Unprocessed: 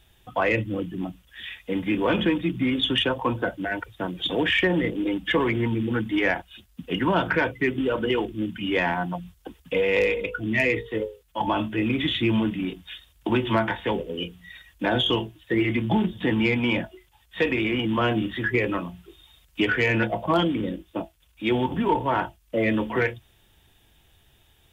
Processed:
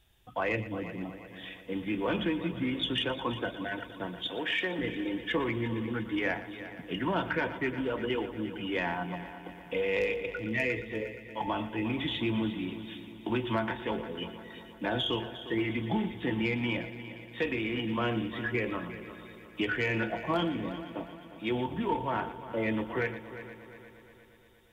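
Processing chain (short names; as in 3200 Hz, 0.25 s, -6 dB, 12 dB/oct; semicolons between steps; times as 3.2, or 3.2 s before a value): 4.27–4.79 HPF 490 Hz 6 dB/oct; multi-head echo 0.118 s, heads first and third, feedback 63%, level -14.5 dB; gain -8 dB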